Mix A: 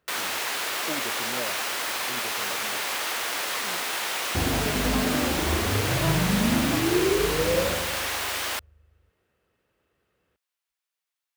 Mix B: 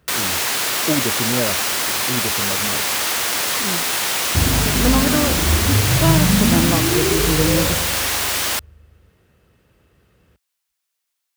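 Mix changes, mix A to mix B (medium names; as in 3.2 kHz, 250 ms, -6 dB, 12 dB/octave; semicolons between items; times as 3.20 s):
speech +11.0 dB; first sound +5.5 dB; master: add tone controls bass +11 dB, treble +6 dB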